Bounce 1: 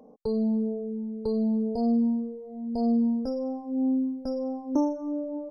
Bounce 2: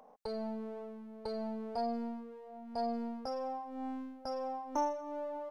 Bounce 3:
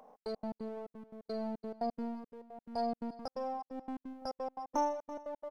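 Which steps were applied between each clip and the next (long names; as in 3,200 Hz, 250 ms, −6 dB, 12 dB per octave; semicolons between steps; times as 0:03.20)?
gain on one half-wave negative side −3 dB; low shelf with overshoot 530 Hz −14 dB, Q 1.5; level +1.5 dB
gate pattern "xx.x.x.x" 174 BPM −60 dB; single-tap delay 337 ms −18.5 dB; level +1 dB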